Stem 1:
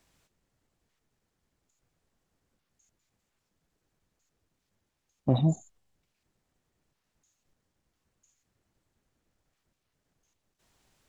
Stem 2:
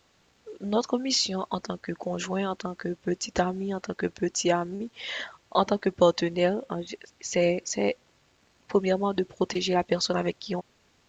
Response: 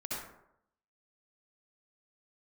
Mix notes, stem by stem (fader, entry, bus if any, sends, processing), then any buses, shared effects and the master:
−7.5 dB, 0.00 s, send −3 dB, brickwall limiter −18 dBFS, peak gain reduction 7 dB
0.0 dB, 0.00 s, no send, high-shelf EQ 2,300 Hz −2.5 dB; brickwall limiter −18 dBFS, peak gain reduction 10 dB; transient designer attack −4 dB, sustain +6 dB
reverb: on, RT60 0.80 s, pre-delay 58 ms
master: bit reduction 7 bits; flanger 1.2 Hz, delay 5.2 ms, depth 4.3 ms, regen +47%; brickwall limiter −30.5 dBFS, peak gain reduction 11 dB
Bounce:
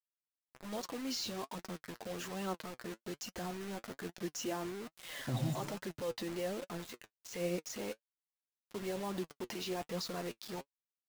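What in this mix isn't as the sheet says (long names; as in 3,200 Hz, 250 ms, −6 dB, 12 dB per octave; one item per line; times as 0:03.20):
stem 2 0.0 dB → −7.0 dB
master: missing brickwall limiter −30.5 dBFS, peak gain reduction 11 dB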